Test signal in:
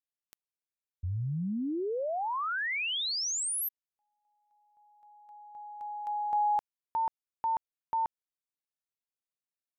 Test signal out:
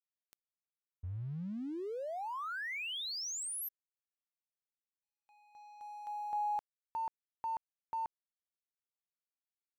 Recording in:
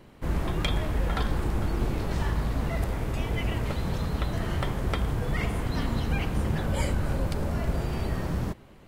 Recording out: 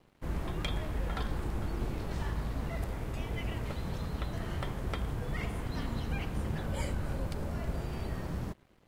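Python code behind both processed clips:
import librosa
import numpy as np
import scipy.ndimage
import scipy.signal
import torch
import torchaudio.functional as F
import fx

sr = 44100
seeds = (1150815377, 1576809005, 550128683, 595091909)

y = np.sign(x) * np.maximum(np.abs(x) - 10.0 ** (-54.0 / 20.0), 0.0)
y = F.gain(torch.from_numpy(y), -7.0).numpy()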